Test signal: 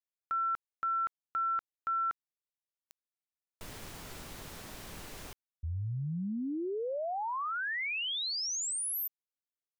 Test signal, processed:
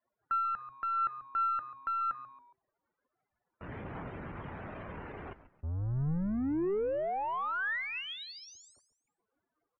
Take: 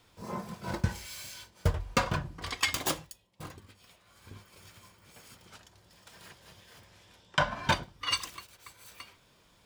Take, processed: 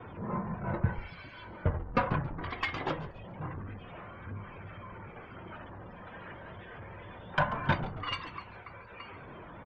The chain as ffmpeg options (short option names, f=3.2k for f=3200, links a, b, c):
-filter_complex "[0:a]aeval=exprs='val(0)+0.5*0.0141*sgn(val(0))':c=same,lowpass=2k,afftdn=nr=29:nf=-50,agate=range=-13dB:threshold=-59dB:ratio=3:release=117:detection=peak,highpass=66,adynamicequalizer=threshold=0.00501:dfrequency=140:dqfactor=2:tfrequency=140:tqfactor=2:attack=5:release=100:ratio=0.333:range=2:mode=boostabove:tftype=bell,aeval=exprs='(tanh(5.62*val(0)+0.3)-tanh(0.3))/5.62':c=same,asplit=2[a][b];[b]asplit=3[c][d][e];[c]adelay=138,afreqshift=-130,volume=-14.5dB[f];[d]adelay=276,afreqshift=-260,volume=-23.1dB[g];[e]adelay=414,afreqshift=-390,volume=-31.8dB[h];[f][g][h]amix=inputs=3:normalize=0[i];[a][i]amix=inputs=2:normalize=0,aphaser=in_gain=1:out_gain=1:delay=4.1:decay=0.22:speed=0.25:type=triangular"